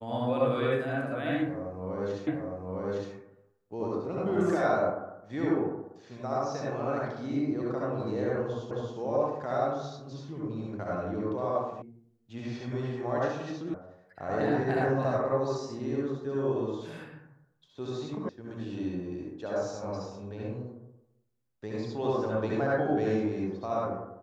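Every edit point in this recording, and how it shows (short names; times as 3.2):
2.27 repeat of the last 0.86 s
8.71 repeat of the last 0.27 s
11.82 sound cut off
13.74 sound cut off
18.29 sound cut off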